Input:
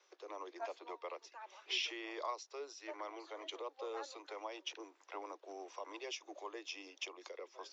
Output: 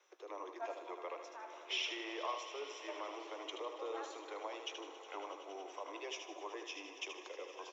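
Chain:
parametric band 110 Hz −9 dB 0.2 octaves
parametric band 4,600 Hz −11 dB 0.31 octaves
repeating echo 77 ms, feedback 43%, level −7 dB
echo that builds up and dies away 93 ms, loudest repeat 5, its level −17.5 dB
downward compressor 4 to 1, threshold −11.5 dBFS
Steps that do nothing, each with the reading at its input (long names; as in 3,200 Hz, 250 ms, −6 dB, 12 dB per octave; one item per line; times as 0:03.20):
parametric band 110 Hz: nothing at its input below 270 Hz
downward compressor, threshold −11.5 dBFS: peak of its input −25.5 dBFS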